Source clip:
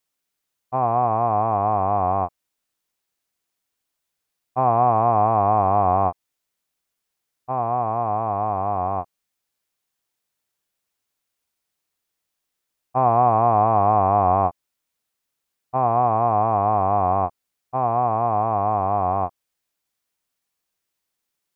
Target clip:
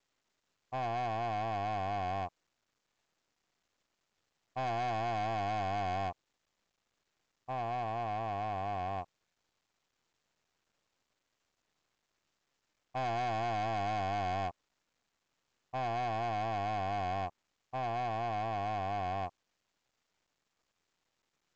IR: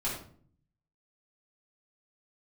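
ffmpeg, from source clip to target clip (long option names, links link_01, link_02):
-af "lowpass=frequency=1500:poles=1,aresample=16000,asoftclip=type=tanh:threshold=-23.5dB,aresample=44100,volume=-8dB" -ar 16000 -c:a pcm_mulaw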